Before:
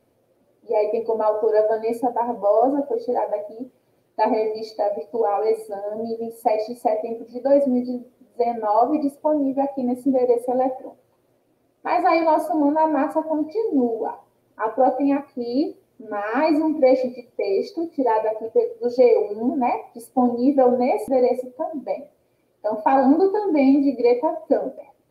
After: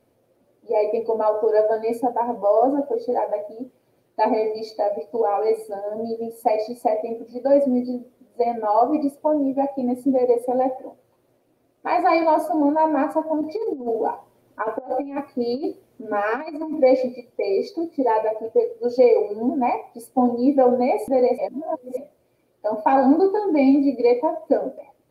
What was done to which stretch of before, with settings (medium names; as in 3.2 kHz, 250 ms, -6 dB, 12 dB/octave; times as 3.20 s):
13.41–16.75 s: compressor with a negative ratio -24 dBFS, ratio -0.5
21.38–21.97 s: reverse